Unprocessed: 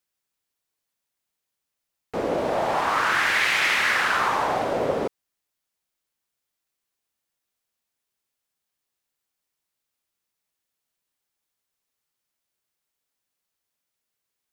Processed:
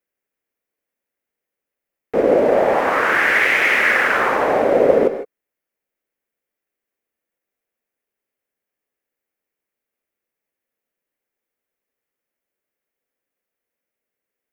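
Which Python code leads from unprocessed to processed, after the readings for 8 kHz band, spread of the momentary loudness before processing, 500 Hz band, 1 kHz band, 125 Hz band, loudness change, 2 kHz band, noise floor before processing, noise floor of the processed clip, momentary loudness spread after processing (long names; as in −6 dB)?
can't be measured, 9 LU, +11.5 dB, +3.5 dB, +2.5 dB, +6.5 dB, +6.5 dB, −83 dBFS, −85 dBFS, 5 LU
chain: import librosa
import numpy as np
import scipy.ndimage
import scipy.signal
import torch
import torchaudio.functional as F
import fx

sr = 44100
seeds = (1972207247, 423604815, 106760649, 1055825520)

p1 = fx.graphic_eq_10(x, sr, hz=(125, 250, 500, 1000, 2000, 4000, 8000), db=(-4, 5, 10, -4, 7, -10, -6))
p2 = np.sign(p1) * np.maximum(np.abs(p1) - 10.0 ** (-34.5 / 20.0), 0.0)
p3 = p1 + F.gain(torch.from_numpy(p2), -3.0).numpy()
p4 = fx.rev_gated(p3, sr, seeds[0], gate_ms=180, shape='rising', drr_db=9.0)
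y = F.gain(torch.from_numpy(p4), -1.5).numpy()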